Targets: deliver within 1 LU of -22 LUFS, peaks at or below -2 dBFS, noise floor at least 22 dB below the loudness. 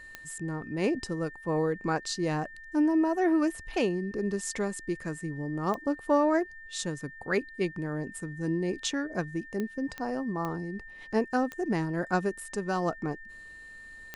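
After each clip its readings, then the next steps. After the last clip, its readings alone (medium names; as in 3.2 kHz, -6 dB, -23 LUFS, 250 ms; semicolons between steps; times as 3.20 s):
clicks found 7; steady tone 1.8 kHz; tone level -45 dBFS; loudness -30.5 LUFS; peak level -13.5 dBFS; loudness target -22.0 LUFS
-> de-click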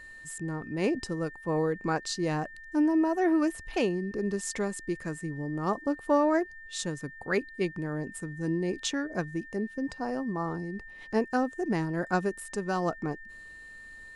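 clicks found 0; steady tone 1.8 kHz; tone level -45 dBFS
-> band-stop 1.8 kHz, Q 30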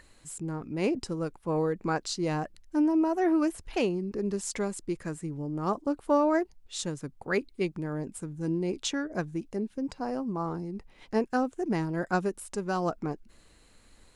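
steady tone not found; loudness -31.0 LUFS; peak level -14.0 dBFS; loudness target -22.0 LUFS
-> trim +9 dB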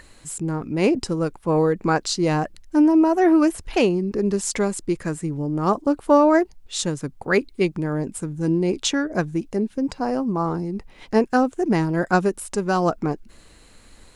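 loudness -22.0 LUFS; peak level -5.0 dBFS; noise floor -50 dBFS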